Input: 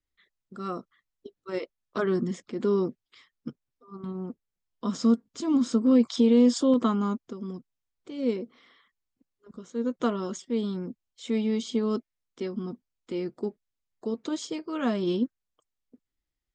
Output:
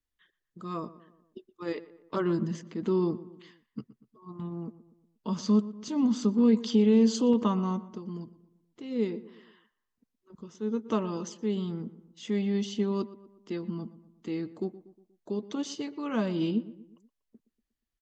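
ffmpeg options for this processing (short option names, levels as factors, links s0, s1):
-filter_complex "[0:a]asplit=2[s0][s1];[s1]adelay=110,lowpass=f=2200:p=1,volume=0.15,asplit=2[s2][s3];[s3]adelay=110,lowpass=f=2200:p=1,volume=0.5,asplit=2[s4][s5];[s5]adelay=110,lowpass=f=2200:p=1,volume=0.5,asplit=2[s6][s7];[s7]adelay=110,lowpass=f=2200:p=1,volume=0.5[s8];[s2][s4][s6][s8]amix=inputs=4:normalize=0[s9];[s0][s9]amix=inputs=2:normalize=0,asetrate=40517,aresample=44100,volume=0.794"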